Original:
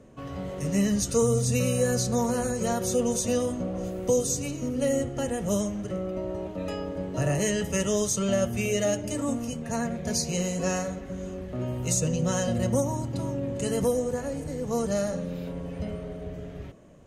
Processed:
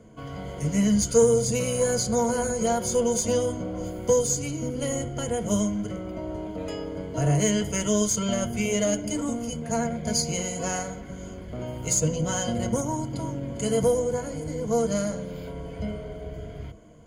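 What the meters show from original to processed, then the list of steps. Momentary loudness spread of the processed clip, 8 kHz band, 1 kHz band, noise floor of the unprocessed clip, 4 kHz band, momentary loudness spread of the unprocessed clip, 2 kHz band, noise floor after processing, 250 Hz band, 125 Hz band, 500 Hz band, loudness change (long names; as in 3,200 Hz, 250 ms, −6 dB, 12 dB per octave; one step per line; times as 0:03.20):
14 LU, +3.0 dB, +3.0 dB, −39 dBFS, +2.5 dB, 10 LU, +0.5 dB, −39 dBFS, +1.0 dB, 0.0 dB, +2.0 dB, +2.0 dB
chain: harmonic generator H 4 −25 dB, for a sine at −13 dBFS
EQ curve with evenly spaced ripples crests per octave 1.8, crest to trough 12 dB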